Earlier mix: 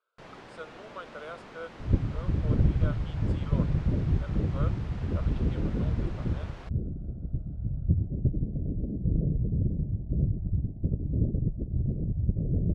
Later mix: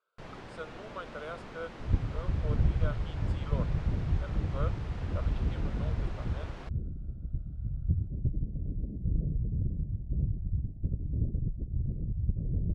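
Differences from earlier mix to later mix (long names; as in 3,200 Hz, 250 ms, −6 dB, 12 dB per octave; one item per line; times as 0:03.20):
second sound −10.5 dB
master: add low-shelf EQ 120 Hz +11 dB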